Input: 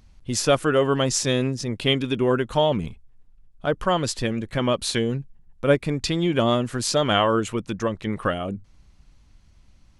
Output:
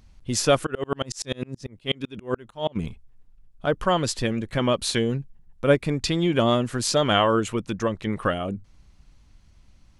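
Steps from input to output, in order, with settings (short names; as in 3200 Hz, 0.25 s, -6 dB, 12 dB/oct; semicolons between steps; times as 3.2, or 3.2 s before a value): 0.65–2.75 dB-ramp tremolo swelling 12 Hz -> 5.6 Hz, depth 35 dB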